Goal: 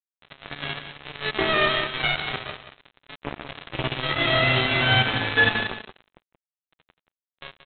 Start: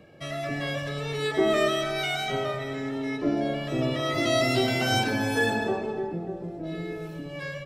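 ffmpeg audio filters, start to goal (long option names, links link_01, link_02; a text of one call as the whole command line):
ffmpeg -i in.wav -af "firequalizer=gain_entry='entry(150,0);entry(260,-9);entry(1600,3)':delay=0.05:min_phase=1,aresample=8000,acrusher=bits=3:mix=0:aa=0.5,aresample=44100,aecho=1:1:179:0.299,volume=5dB" out.wav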